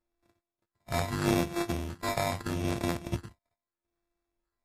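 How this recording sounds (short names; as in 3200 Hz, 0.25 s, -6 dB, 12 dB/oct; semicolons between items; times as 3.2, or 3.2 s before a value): a buzz of ramps at a fixed pitch in blocks of 128 samples; phasing stages 6, 0.79 Hz, lowest notch 330–2900 Hz; aliases and images of a low sample rate 3000 Hz, jitter 0%; MP3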